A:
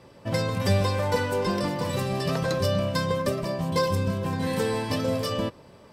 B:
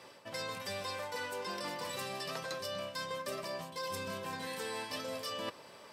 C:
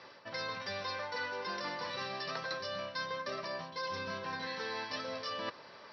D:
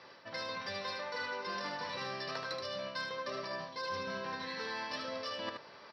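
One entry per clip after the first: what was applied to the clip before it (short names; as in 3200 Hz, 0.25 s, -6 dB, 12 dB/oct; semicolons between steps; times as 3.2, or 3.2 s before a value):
HPF 1200 Hz 6 dB/oct; reverse; compressor 12:1, threshold -41 dBFS, peak gain reduction 17 dB; reverse; gain +4.5 dB
rippled Chebyshev low-pass 5800 Hz, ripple 6 dB; gain +4.5 dB
added harmonics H 3 -24 dB, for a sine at -24.5 dBFS; echo 76 ms -5.5 dB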